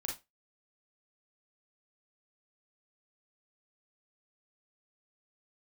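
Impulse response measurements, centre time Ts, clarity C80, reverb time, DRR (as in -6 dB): 29 ms, 17.0 dB, 0.20 s, -1.5 dB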